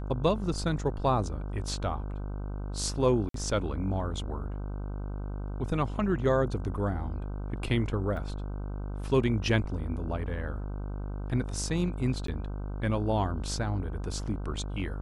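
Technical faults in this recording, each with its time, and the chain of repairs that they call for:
mains buzz 50 Hz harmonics 31 −35 dBFS
0:03.29–0:03.34: drop-out 53 ms
0:08.17: drop-out 3.1 ms
0:12.27–0:12.28: drop-out 13 ms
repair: hum removal 50 Hz, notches 31
repair the gap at 0:03.29, 53 ms
repair the gap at 0:08.17, 3.1 ms
repair the gap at 0:12.27, 13 ms

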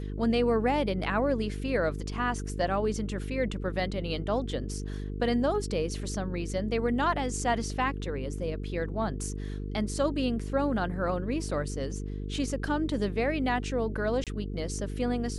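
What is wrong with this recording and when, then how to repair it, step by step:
mains buzz 50 Hz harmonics 9 −35 dBFS
0:14.24–0:14.27: drop-out 27 ms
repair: hum removal 50 Hz, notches 9
repair the gap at 0:14.24, 27 ms

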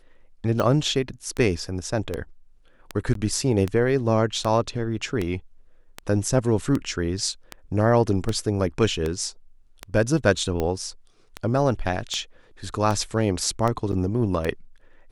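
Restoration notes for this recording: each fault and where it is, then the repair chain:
scratch tick 78 rpm −13 dBFS
0:03.14–0:03.15: drop-out 13 ms
0:13.92–0:13.93: drop-out 7.5 ms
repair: click removal
repair the gap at 0:03.14, 13 ms
repair the gap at 0:13.92, 7.5 ms

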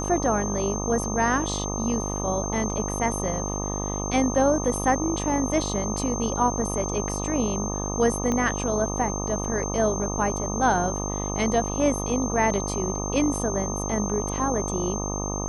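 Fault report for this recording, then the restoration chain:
mains buzz 50 Hz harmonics 25 −30 dBFS
whistle 6,300 Hz −32 dBFS
0:08.32: click −15 dBFS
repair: click removal
notch filter 6,300 Hz, Q 30
hum removal 50 Hz, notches 25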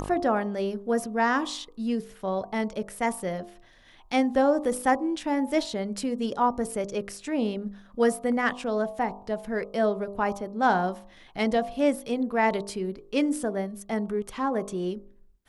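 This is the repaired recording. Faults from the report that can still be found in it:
0:08.32: click

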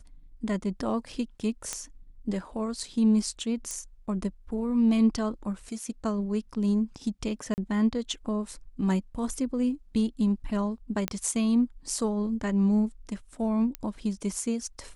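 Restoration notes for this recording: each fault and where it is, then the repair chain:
0:01.73: click −16 dBFS
0:03.71: click −21 dBFS
0:07.54–0:07.58: drop-out 39 ms
0:11.08: click −12 dBFS
0:13.75: click −17 dBFS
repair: click removal
repair the gap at 0:07.54, 39 ms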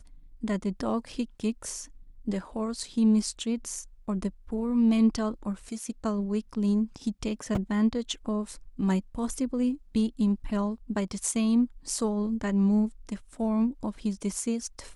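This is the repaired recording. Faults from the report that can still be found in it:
none of them is left

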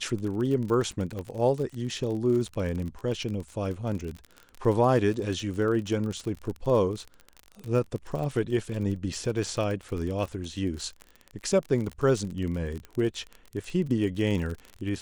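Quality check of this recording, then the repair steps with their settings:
surface crackle 34 per second −32 dBFS
0:01.19: click −23 dBFS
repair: click removal

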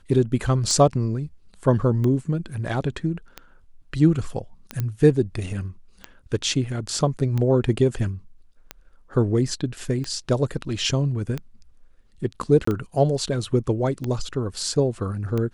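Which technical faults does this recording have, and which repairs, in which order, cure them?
scratch tick 45 rpm −15 dBFS
0:04.80: click −13 dBFS
0:12.65–0:12.67: drop-out 24 ms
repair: click removal
repair the gap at 0:12.65, 24 ms

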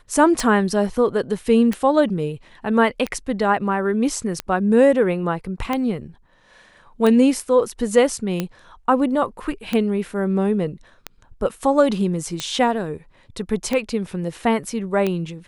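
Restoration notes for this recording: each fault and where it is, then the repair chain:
scratch tick 45 rpm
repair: click removal

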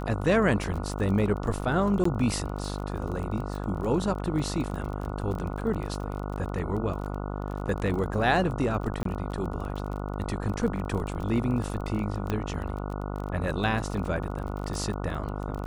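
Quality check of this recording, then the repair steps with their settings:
mains buzz 50 Hz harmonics 29 −33 dBFS
surface crackle 28 per second −33 dBFS
0:02.04–0:02.05: drop-out 14 ms
0:09.03–0:09.05: drop-out 23 ms
0:12.30: click −16 dBFS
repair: click removal
hum removal 50 Hz, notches 29
repair the gap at 0:02.04, 14 ms
repair the gap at 0:09.03, 23 ms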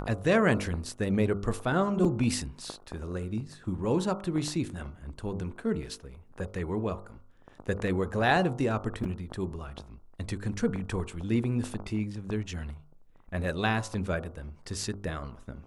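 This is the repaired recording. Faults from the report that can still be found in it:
none of them is left

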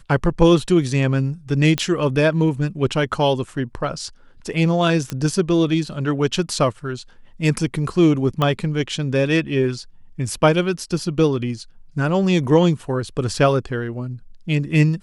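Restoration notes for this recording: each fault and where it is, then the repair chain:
0:01.78: click −6 dBFS
0:05.10: click −11 dBFS
0:08.42: click −9 dBFS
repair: click removal

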